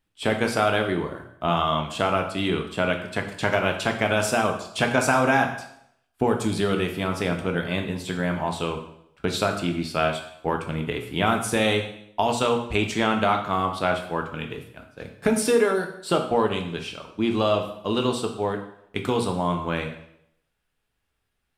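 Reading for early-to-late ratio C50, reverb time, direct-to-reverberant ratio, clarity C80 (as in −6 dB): 8.5 dB, 0.75 s, 3.5 dB, 11.0 dB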